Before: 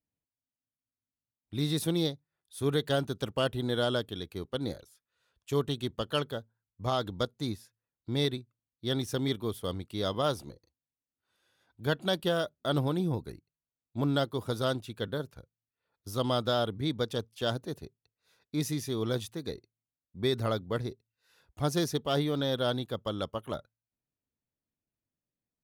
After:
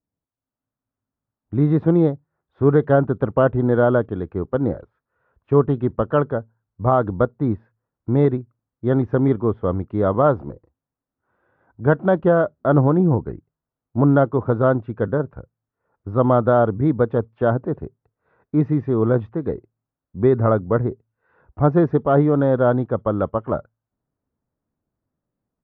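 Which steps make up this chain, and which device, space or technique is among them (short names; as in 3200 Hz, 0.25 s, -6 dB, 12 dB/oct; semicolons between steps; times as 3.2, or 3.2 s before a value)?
action camera in a waterproof case (LPF 1400 Hz 24 dB/oct; AGC gain up to 7.5 dB; gain +6 dB; AAC 96 kbps 22050 Hz)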